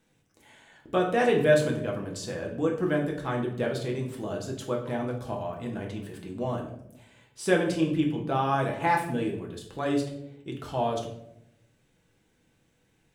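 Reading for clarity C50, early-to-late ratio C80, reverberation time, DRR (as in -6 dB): 7.5 dB, 11.0 dB, 0.80 s, -0.5 dB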